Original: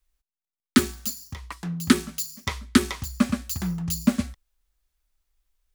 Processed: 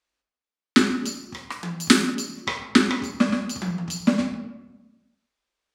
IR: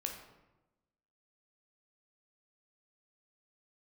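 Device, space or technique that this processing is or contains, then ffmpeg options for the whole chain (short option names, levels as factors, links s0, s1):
supermarket ceiling speaker: -filter_complex "[0:a]highpass=210,lowpass=5800[s0];[1:a]atrim=start_sample=2205[s1];[s0][s1]afir=irnorm=-1:irlink=0,asettb=1/sr,asplit=3[s2][s3][s4];[s2]atrim=end=1.344[s5];[s3]atrim=start=1.34:end=2.15,asetpts=PTS-STARTPTS,afade=t=in:d=0.004:c=qsin,afade=t=out:st=0.806:d=0.004:c=qsin,aemphasis=mode=production:type=50kf[s6];[s4]atrim=start=2.146[s7];[s5][s6]acrossfade=d=0.004:c1=hsin:c2=qsin[s8];[s8][s7]acrossfade=d=0.004:c1=qsin:c2=hsin,volume=1.68"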